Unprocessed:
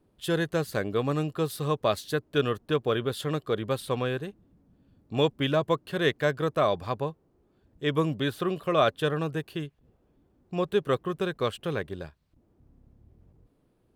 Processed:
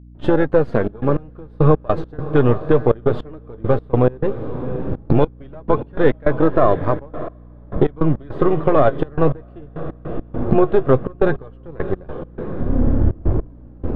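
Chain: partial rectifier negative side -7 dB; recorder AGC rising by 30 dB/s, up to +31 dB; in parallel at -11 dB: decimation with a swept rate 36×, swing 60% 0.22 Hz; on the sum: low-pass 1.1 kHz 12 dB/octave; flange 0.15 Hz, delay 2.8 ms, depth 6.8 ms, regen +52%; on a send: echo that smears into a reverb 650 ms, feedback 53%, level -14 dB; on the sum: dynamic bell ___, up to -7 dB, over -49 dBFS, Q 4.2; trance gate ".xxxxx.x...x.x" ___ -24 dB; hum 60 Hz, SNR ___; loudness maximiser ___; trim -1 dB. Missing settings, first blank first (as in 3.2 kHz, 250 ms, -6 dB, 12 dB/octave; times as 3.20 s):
180 Hz, 103 bpm, 25 dB, +18 dB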